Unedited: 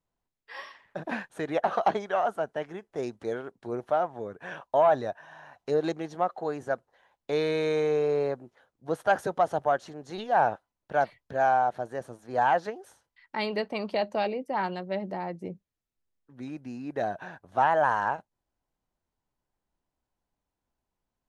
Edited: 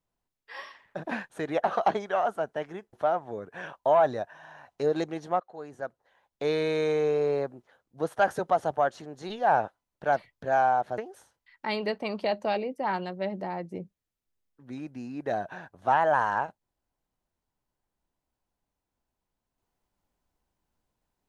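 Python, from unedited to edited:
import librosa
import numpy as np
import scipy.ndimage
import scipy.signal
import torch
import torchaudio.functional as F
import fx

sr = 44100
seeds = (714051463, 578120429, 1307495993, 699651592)

y = fx.edit(x, sr, fx.cut(start_s=2.93, length_s=0.88),
    fx.fade_in_from(start_s=6.28, length_s=1.11, floor_db=-15.0),
    fx.cut(start_s=11.86, length_s=0.82), tone=tone)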